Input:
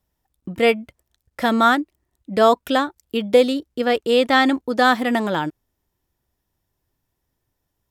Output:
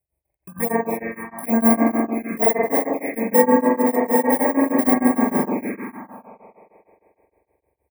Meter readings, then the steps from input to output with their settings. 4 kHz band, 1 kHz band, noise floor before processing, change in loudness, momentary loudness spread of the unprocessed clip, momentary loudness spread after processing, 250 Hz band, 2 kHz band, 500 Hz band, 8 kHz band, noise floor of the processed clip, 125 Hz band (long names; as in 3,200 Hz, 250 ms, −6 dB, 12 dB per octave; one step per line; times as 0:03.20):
below −40 dB, −3.0 dB, −77 dBFS, 0.0 dB, 11 LU, 13 LU, +3.5 dB, −6.0 dB, −1.5 dB, +10.0 dB, −79 dBFS, +1.5 dB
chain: samples in bit-reversed order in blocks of 32 samples
high-pass filter 73 Hz
double-tracking delay 41 ms −13.5 dB
on a send: echo with shifted repeats 258 ms, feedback 33%, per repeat +110 Hz, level −13 dB
on the sum: spring reverb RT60 2.8 s, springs 44 ms, chirp 65 ms, DRR −6.5 dB
phaser swept by the level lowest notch 230 Hz, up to 3,000 Hz, full sweep at −10.5 dBFS
linear-phase brick-wall band-stop 2,600–8,000 Hz
tremolo along a rectified sine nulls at 6.5 Hz
level −2 dB